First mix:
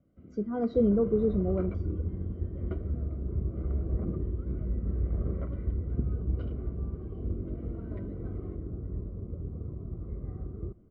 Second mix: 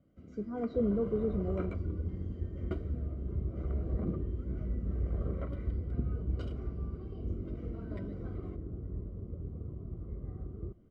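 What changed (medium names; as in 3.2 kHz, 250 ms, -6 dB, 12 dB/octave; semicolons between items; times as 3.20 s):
speech -6.0 dB; first sound: remove distance through air 370 m; second sound -3.5 dB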